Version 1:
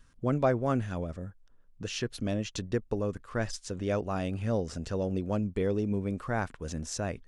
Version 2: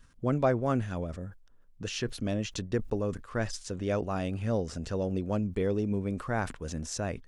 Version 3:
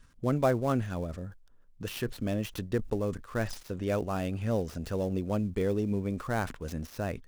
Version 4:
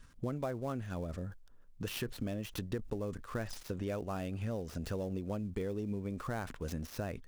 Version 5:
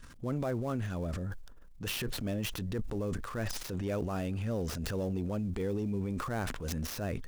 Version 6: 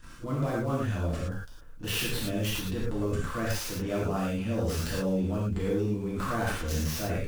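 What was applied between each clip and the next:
decay stretcher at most 140 dB/s
dead-time distortion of 0.078 ms
compression 6:1, threshold -35 dBFS, peak gain reduction 14 dB; trim +1 dB
transient shaper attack -7 dB, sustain +8 dB; trim +4 dB
reverse echo 35 ms -17 dB; gated-style reverb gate 140 ms flat, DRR -7 dB; trim -2 dB

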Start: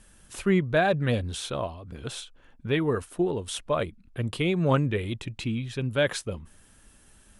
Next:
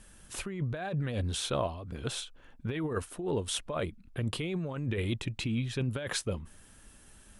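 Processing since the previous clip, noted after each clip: compressor with a negative ratio -29 dBFS, ratio -1; trim -3 dB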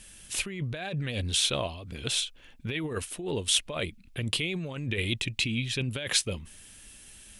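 resonant high shelf 1.8 kHz +8.5 dB, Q 1.5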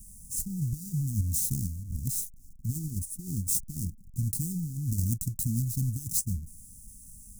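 square wave that keeps the level; inverse Chebyshev band-stop 490–3200 Hz, stop band 50 dB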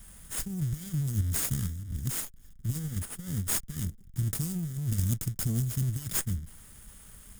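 comb filter that takes the minimum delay 0.6 ms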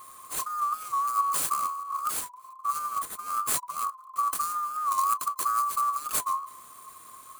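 split-band scrambler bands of 1 kHz; warped record 45 rpm, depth 100 cents; trim +2 dB

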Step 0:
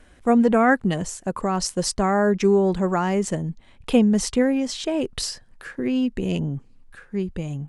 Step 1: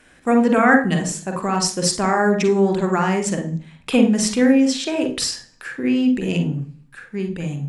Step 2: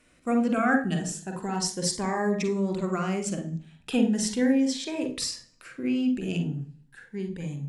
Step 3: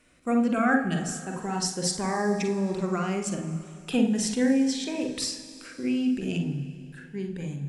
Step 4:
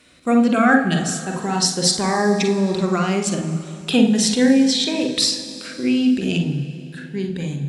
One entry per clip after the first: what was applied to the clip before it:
reverberation RT60 0.40 s, pre-delay 40 ms, DRR 5 dB; trim +4 dB
Shepard-style phaser rising 0.37 Hz; trim -7.5 dB
Schroeder reverb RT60 3 s, DRR 11.5 dB
high-pass 59 Hz; peaking EQ 3.9 kHz +10 dB 0.59 oct; filtered feedback delay 184 ms, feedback 82%, low-pass 2 kHz, level -21.5 dB; trim +8 dB

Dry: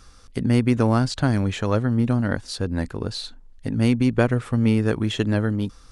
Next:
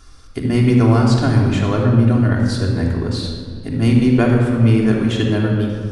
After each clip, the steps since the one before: simulated room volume 3800 m³, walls mixed, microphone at 3.2 m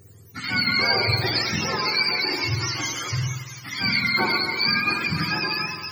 spectrum inverted on a logarithmic axis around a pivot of 730 Hz; trim -3.5 dB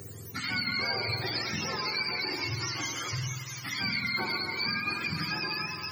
three bands compressed up and down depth 70%; trim -9 dB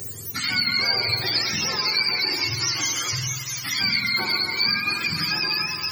treble shelf 3 kHz +11.5 dB; trim +3 dB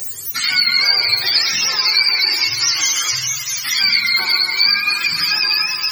tilt shelf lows -8.5 dB, about 670 Hz

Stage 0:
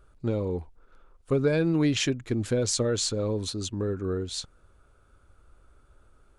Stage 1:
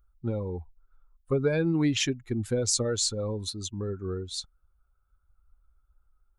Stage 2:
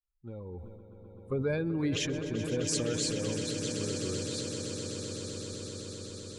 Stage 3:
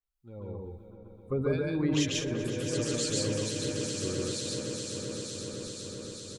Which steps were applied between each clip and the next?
expander on every frequency bin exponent 1.5; treble shelf 4.4 kHz +5 dB; band-stop 660 Hz, Q 17
fade-in on the opening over 0.68 s; echo with a slow build-up 128 ms, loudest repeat 8, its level -12 dB; decay stretcher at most 39 dB/s; trim -6.5 dB
harmonic tremolo 2.2 Hz, depth 70%, crossover 2.4 kHz; on a send: loudspeakers at several distances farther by 49 m 0 dB, 65 m -7 dB; on the sum: trim +1.5 dB

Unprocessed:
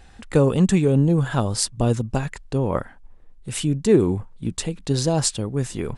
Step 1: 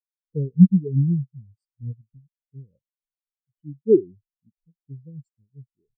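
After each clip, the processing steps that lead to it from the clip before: high-order bell 1.1 kHz -15 dB; spectral contrast expander 4:1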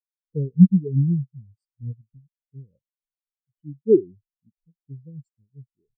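no audible change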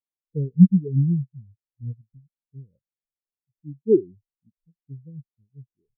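Bessel low-pass 530 Hz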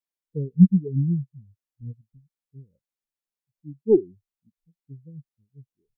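tracing distortion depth 0.022 ms; peaking EQ 120 Hz -4.5 dB 0.77 oct

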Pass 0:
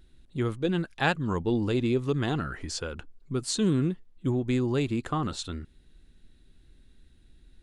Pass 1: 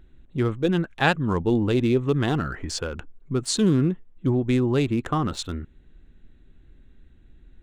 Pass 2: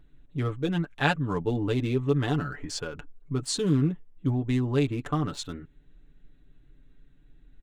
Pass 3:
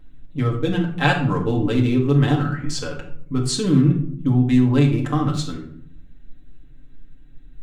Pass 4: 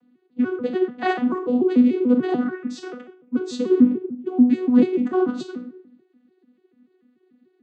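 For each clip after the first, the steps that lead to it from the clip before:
local Wiener filter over 9 samples; trim +5 dB
comb 6.9 ms, depth 71%; trim -6 dB
simulated room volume 990 m³, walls furnished, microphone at 2.1 m; trim +4 dB
vocoder on a broken chord bare fifth, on B3, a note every 146 ms

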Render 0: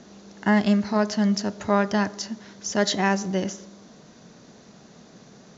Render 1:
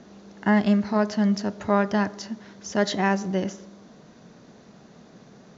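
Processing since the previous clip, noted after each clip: treble shelf 4.9 kHz -11 dB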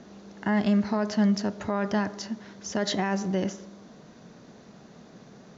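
peak limiter -16.5 dBFS, peak gain reduction 8.5 dB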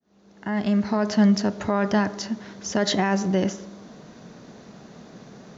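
fade-in on the opening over 1.15 s; trim +5 dB

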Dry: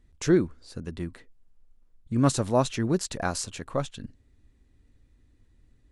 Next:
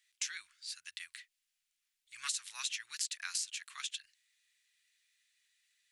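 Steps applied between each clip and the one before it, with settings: inverse Chebyshev high-pass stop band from 610 Hz, stop band 60 dB; compression 4:1, threshold -42 dBFS, peak gain reduction 11.5 dB; trim +6.5 dB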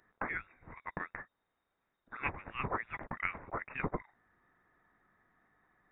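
frequency inversion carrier 3.7 kHz; trim +7.5 dB

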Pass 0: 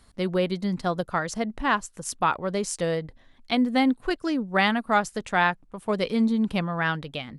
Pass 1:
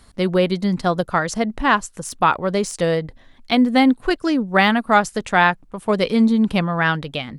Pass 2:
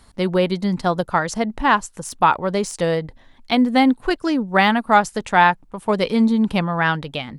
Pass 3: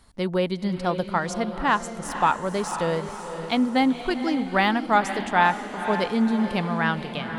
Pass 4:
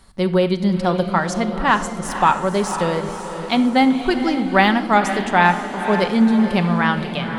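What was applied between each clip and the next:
de-esser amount 60%; trim +7 dB
peaking EQ 890 Hz +5.5 dB 0.28 oct; trim -1 dB
echo that smears into a reverb 506 ms, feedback 51%, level -9 dB; trim -5.5 dB
simulated room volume 3200 m³, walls furnished, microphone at 1.1 m; trim +5 dB

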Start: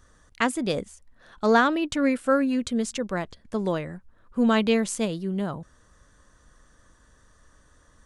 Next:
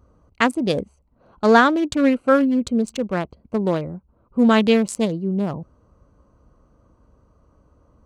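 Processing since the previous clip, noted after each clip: local Wiener filter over 25 samples; high-pass 48 Hz; trim +6 dB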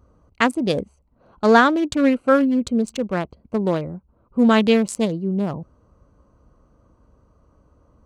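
no audible change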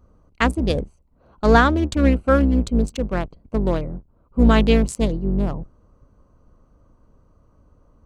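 octave divider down 2 oct, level +2 dB; trim -1.5 dB

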